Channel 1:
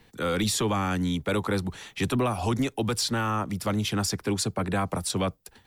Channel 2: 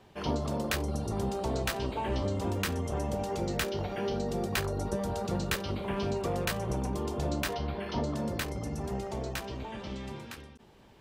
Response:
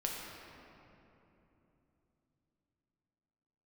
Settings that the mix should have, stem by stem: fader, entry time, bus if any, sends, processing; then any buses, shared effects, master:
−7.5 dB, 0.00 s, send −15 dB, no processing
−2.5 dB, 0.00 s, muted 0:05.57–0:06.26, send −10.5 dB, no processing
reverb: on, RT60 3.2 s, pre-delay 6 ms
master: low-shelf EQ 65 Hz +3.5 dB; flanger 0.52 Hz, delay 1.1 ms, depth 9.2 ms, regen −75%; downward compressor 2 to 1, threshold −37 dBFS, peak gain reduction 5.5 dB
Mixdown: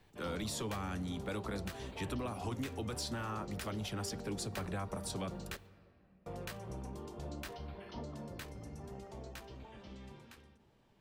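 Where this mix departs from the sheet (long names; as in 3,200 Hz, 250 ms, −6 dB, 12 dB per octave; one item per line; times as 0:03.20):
stem 2 −2.5 dB → −9.5 dB
reverb return −7.5 dB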